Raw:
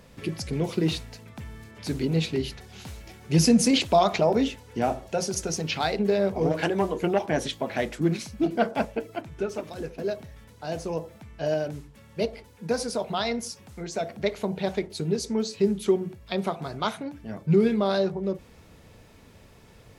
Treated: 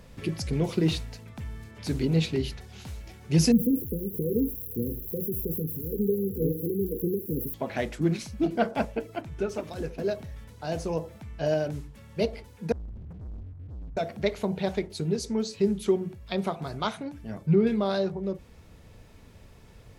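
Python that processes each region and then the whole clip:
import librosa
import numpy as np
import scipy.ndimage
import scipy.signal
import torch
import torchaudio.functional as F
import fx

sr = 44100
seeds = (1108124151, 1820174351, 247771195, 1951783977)

y = fx.chain(x, sr, fx.crossing_spikes(level_db=-22.0),
    fx.brickwall_bandstop(low_hz=520.0, high_hz=11000.0), at=(3.52, 7.54))
y = fx.chain(y, sr, fx.cheby2_lowpass(hz=600.0, order=4, stop_db=80),
    fx.leveller(passes=5), at=(12.72, 13.97))
y = fx.chain(y, sr, fx.high_shelf(hz=11000.0, db=12.0),
    fx.env_lowpass_down(base_hz=2600.0, full_db=-17.0), at=(16.67, 17.67))
y = fx.low_shelf(y, sr, hz=91.0, db=9.5)
y = fx.rider(y, sr, range_db=3, speed_s=2.0)
y = y * 10.0 ** (-3.0 / 20.0)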